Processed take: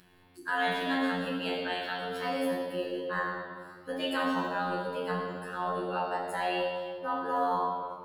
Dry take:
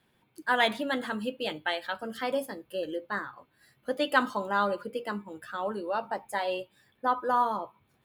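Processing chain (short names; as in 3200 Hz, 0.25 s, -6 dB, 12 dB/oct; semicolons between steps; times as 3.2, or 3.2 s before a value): limiter -19.5 dBFS, peak gain reduction 9.5 dB; robotiser 89.5 Hz; reverb RT60 2.0 s, pre-delay 6 ms, DRR -5.5 dB; upward compressor, threshold -45 dBFS; gain -6 dB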